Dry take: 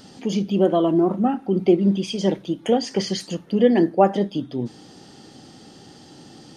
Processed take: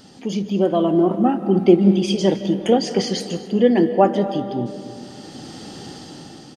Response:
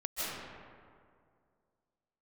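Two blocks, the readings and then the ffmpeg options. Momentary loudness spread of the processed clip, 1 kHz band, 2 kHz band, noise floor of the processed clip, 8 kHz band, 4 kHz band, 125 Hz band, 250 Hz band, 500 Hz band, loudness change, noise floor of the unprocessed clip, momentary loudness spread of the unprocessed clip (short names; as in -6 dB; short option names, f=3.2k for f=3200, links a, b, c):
21 LU, +2.0 dB, +2.0 dB, -41 dBFS, +2.5 dB, +3.0 dB, +3.0 dB, +2.5 dB, +2.5 dB, +2.5 dB, -47 dBFS, 10 LU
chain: -filter_complex "[0:a]dynaudnorm=f=310:g=7:m=15dB,aecho=1:1:251:0.0944,asplit=2[a][b];[1:a]atrim=start_sample=2205[c];[b][c]afir=irnorm=-1:irlink=0,volume=-15dB[d];[a][d]amix=inputs=2:normalize=0,volume=-2dB"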